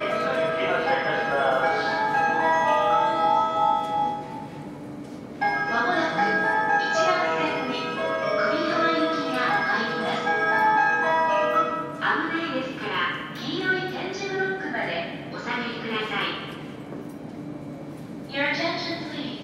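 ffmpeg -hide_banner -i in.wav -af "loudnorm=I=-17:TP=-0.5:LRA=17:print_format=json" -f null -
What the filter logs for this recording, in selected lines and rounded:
"input_i" : "-24.0",
"input_tp" : "-10.8",
"input_lra" : "8.1",
"input_thresh" : "-34.8",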